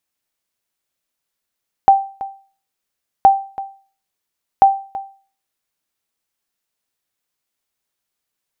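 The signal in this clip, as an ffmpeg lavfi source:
-f lavfi -i "aevalsrc='0.841*(sin(2*PI*783*mod(t,1.37))*exp(-6.91*mod(t,1.37)/0.4)+0.141*sin(2*PI*783*max(mod(t,1.37)-0.33,0))*exp(-6.91*max(mod(t,1.37)-0.33,0)/0.4))':d=4.11:s=44100"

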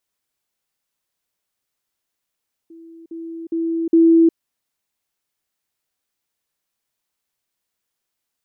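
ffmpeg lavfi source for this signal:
-f lavfi -i "aevalsrc='pow(10,(-38.5+10*floor(t/0.41))/20)*sin(2*PI*330*t)*clip(min(mod(t,0.41),0.36-mod(t,0.41))/0.005,0,1)':d=1.64:s=44100"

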